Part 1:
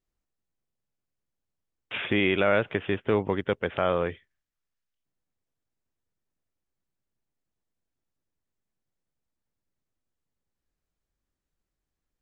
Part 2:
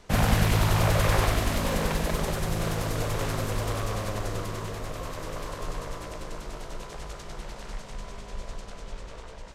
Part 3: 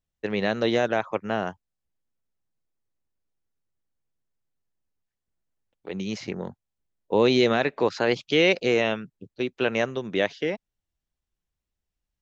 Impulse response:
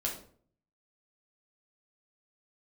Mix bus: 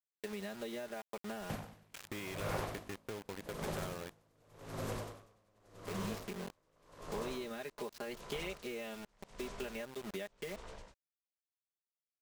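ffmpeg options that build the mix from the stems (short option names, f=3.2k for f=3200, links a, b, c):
-filter_complex "[0:a]volume=-16.5dB[a];[1:a]acrossover=split=120|1000[b][c][d];[b]acompressor=threshold=-44dB:ratio=4[e];[c]acompressor=threshold=-31dB:ratio=4[f];[d]acompressor=threshold=-41dB:ratio=4[g];[e][f][g]amix=inputs=3:normalize=0,aeval=exprs='val(0)*pow(10,-34*(0.5-0.5*cos(2*PI*0.86*n/s))/20)':c=same,adelay=1400,volume=-5dB[h];[2:a]aecho=1:1:4.9:0.88,volume=-12dB[i];[a][i]amix=inputs=2:normalize=0,acrusher=bits=6:mix=0:aa=0.000001,acompressor=threshold=-39dB:ratio=12,volume=0dB[j];[h][j]amix=inputs=2:normalize=0"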